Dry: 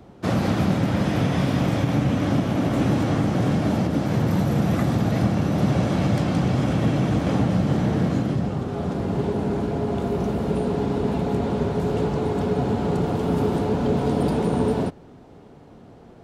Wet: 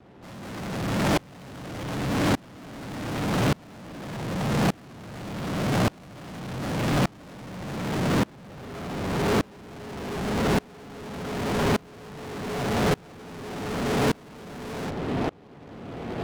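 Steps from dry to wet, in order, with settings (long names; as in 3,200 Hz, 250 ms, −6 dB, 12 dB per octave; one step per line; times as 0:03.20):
low-pass filter 1,600 Hz 6 dB per octave
low-shelf EQ 62 Hz −7.5 dB
fuzz pedal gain 50 dB, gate −55 dBFS
tremolo with a ramp in dB swelling 0.85 Hz, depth 30 dB
level −6 dB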